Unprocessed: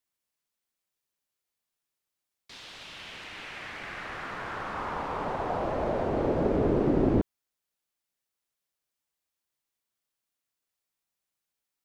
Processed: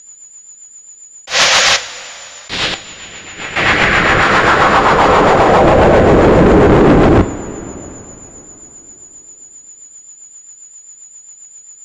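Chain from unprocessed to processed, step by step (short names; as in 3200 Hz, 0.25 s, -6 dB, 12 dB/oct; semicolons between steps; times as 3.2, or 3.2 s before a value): 1.27–1.77 painted sound noise 490–7300 Hz -32 dBFS; 2.74–3.56 gate -39 dBFS, range -20 dB; 4.22–5.61 tone controls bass -6 dB, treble +5 dB; in parallel at -1.5 dB: compressor, threshold -38 dBFS, peak gain reduction 17.5 dB; on the sum: whine 7000 Hz -53 dBFS; rotary speaker horn 7.5 Hz; overloaded stage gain 31 dB; air absorption 89 m; two-slope reverb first 0.29 s, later 3.7 s, from -18 dB, DRR 9 dB; maximiser +29.5 dB; attack slew limiter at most 270 dB/s; gain -1 dB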